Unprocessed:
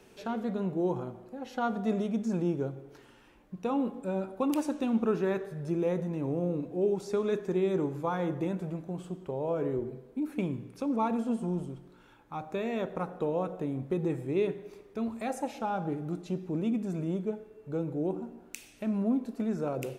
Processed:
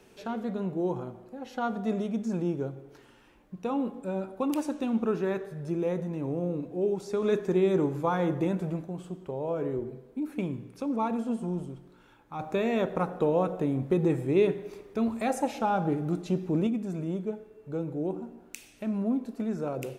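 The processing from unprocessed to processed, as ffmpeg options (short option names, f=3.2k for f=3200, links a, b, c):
-filter_complex "[0:a]asettb=1/sr,asplit=3[a][b][c];[a]atrim=end=12.394[d];[b]atrim=start=12.39:end=16.67,asetpts=PTS-STARTPTS,afade=t=in:d=0.004:c=qsin,afade=t=out:st=4.276:d=0.004:c=qsin,acontrast=35[e];[c]atrim=start=16.666[f];[d][e]acrossfade=d=0.004:c1=hsin:c2=qsin[g];[g][f]acrossfade=d=0.004:c1=qsin:c2=hsin,asplit=3[h][i][j];[h]atrim=end=7.222[k];[i]atrim=start=7.218:end=8.862,asetpts=PTS-STARTPTS,volume=4dB[l];[j]atrim=start=8.858[m];[k][l]acrossfade=d=0.004:c1=hsin:c2=hsin[n];[n][m]acrossfade=d=0.004:c1=hsin:c2=hsin"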